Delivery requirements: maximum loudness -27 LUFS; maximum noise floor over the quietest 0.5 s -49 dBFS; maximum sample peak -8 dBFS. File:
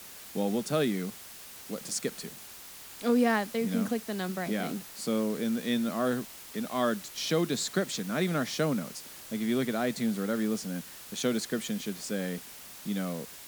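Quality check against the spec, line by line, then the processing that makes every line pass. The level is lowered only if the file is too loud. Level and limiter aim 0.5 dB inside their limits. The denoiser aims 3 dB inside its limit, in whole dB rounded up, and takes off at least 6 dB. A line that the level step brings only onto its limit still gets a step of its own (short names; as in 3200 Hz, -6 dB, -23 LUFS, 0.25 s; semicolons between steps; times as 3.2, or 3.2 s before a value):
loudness -31.0 LUFS: OK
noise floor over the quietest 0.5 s -47 dBFS: fail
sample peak -13.0 dBFS: OK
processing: denoiser 6 dB, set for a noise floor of -47 dBFS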